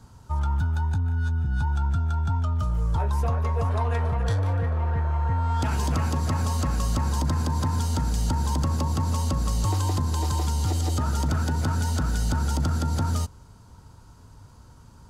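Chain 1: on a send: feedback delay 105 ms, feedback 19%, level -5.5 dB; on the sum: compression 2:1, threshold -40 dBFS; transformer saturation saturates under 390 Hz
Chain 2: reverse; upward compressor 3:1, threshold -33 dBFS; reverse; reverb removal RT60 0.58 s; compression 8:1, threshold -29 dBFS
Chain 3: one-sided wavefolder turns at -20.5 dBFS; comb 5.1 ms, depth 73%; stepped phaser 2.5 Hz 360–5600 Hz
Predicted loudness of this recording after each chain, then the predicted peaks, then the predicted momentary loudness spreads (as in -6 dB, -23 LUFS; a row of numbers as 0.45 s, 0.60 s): -39.5 LUFS, -34.0 LUFS, -30.0 LUFS; -23.5 dBFS, -21.5 dBFS, -14.0 dBFS; 6 LU, 7 LU, 5 LU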